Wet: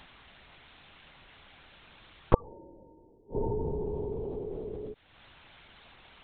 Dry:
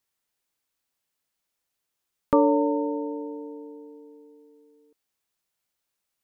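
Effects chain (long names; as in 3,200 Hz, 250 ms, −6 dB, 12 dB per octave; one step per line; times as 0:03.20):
upward compression, threshold −33 dBFS
gate with flip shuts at −26 dBFS, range −35 dB
linear-prediction vocoder at 8 kHz whisper
level +7 dB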